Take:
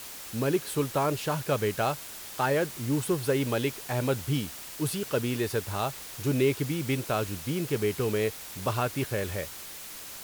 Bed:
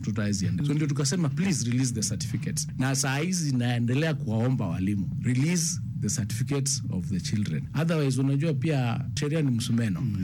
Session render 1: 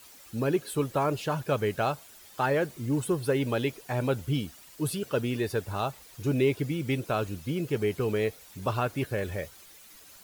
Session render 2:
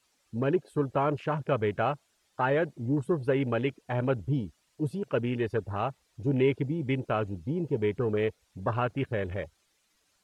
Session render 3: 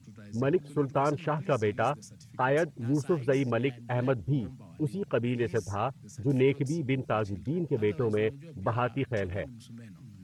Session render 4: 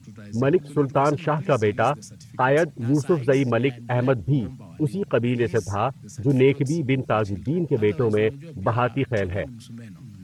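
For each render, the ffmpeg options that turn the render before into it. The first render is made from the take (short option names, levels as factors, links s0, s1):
-af "afftdn=nr=12:nf=-42"
-af "afwtdn=0.0112,lowpass=8400"
-filter_complex "[1:a]volume=0.0891[s0];[0:a][s0]amix=inputs=2:normalize=0"
-af "volume=2.24"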